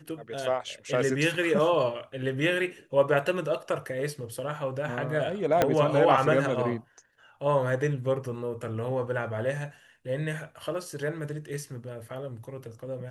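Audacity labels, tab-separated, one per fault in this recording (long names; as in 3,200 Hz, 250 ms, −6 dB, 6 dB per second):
5.620000	5.620000	click −8 dBFS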